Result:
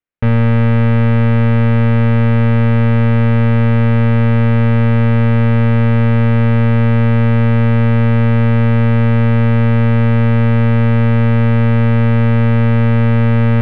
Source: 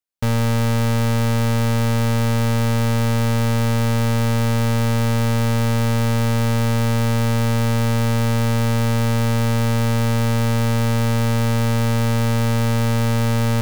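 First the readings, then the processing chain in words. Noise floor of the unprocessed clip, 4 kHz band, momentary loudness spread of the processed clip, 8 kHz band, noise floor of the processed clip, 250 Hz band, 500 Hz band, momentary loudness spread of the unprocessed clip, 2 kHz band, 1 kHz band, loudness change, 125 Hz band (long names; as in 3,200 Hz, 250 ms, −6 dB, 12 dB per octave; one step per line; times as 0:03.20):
−18 dBFS, can't be measured, 0 LU, below −25 dB, −10 dBFS, +7.5 dB, +5.0 dB, 0 LU, +5.0 dB, +2.5 dB, +7.0 dB, +7.5 dB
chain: low-pass filter 2,400 Hz 24 dB per octave
parametric band 880 Hz −6.5 dB 1.4 octaves
mains-hum notches 50/100/150/200/250/300/350 Hz
level +8 dB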